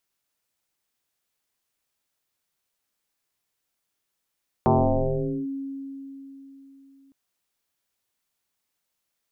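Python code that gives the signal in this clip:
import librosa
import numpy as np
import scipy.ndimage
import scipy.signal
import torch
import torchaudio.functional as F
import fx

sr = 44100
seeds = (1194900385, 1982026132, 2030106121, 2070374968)

y = fx.fm2(sr, length_s=2.46, level_db=-14.5, carrier_hz=273.0, ratio=0.46, index=5.5, index_s=0.81, decay_s=3.79, shape='linear')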